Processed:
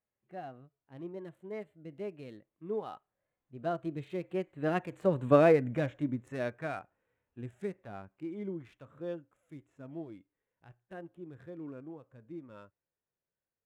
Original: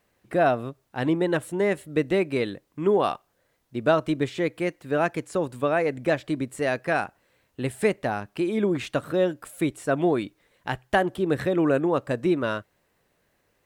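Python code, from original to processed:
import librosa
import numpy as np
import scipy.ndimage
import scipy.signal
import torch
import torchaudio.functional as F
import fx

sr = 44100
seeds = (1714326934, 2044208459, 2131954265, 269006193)

y = fx.wiener(x, sr, points=9)
y = fx.doppler_pass(y, sr, speed_mps=20, closest_m=6.4, pass_at_s=5.34)
y = fx.hpss(y, sr, part='percussive', gain_db=-13)
y = F.gain(torch.from_numpy(y), 5.0).numpy()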